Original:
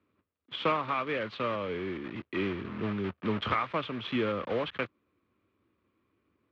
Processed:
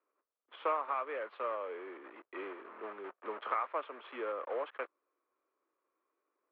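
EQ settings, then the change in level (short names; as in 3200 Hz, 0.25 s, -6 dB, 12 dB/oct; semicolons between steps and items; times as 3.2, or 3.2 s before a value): Bessel high-pass 650 Hz, order 6; LPF 1200 Hz 12 dB/oct; 0.0 dB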